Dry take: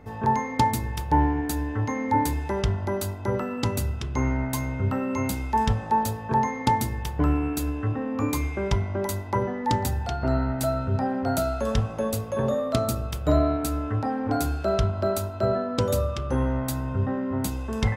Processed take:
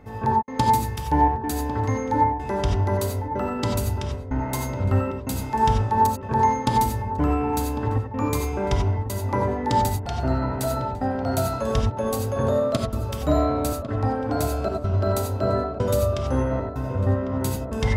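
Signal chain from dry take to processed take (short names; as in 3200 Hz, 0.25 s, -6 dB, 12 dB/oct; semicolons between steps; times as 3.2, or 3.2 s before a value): de-hum 352.4 Hz, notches 18; step gate "xxxx..xxxxxx" 188 bpm -60 dB; on a send: darkening echo 1.1 s, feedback 64%, low-pass 1400 Hz, level -10 dB; on the sum: non-linear reverb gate 0.11 s rising, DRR 2.5 dB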